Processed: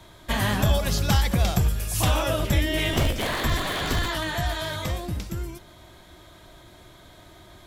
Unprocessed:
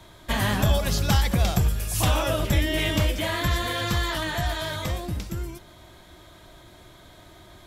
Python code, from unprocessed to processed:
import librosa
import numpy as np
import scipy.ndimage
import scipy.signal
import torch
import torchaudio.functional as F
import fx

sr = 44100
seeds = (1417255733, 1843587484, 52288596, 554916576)

y = fx.cycle_switch(x, sr, every=3, mode='inverted', at=(2.93, 4.08))